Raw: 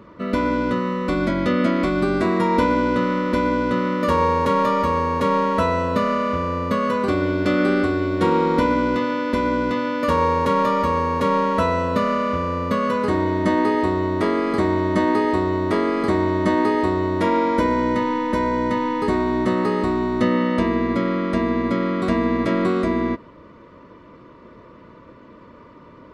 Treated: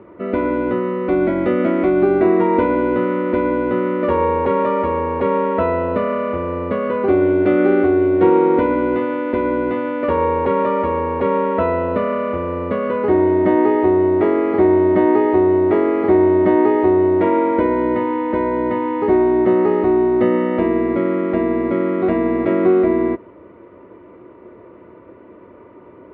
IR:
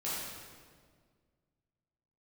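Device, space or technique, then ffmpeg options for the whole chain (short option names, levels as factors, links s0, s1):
bass cabinet: -af "highpass=77,equalizer=f=150:t=q:w=4:g=-9,equalizer=f=230:t=q:w=4:g=-4,equalizer=f=370:t=q:w=4:g=9,equalizer=f=770:t=q:w=4:g=8,equalizer=f=1100:t=q:w=4:g=-7,equalizer=f=1700:t=q:w=4:g=-4,lowpass=f=2400:w=0.5412,lowpass=f=2400:w=1.3066,volume=1.19"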